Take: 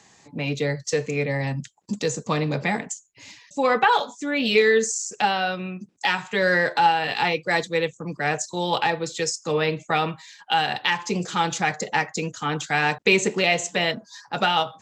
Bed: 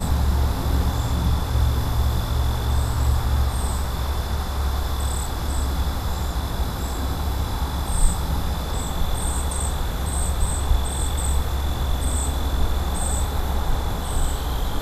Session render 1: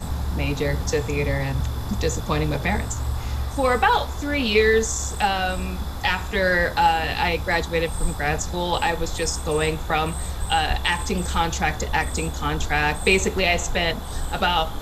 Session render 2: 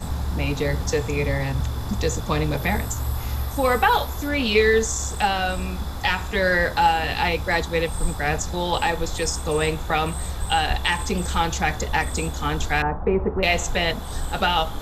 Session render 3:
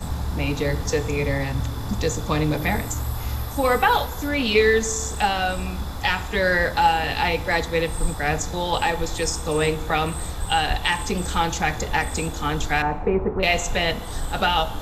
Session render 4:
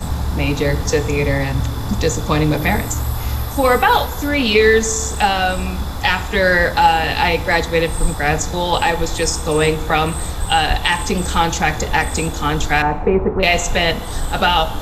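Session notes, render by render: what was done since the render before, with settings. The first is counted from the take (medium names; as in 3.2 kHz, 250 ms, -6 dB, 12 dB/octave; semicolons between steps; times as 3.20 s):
add bed -6 dB
2.57–4.29 s: peaking EQ 12 kHz +14 dB 0.27 oct; 12.82–13.43 s: low-pass 1.3 kHz 24 dB/octave
reverse echo 30 ms -23 dB; FDN reverb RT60 1.2 s, low-frequency decay 1.4×, high-frequency decay 0.75×, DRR 15 dB
trim +6 dB; peak limiter -2 dBFS, peak gain reduction 3 dB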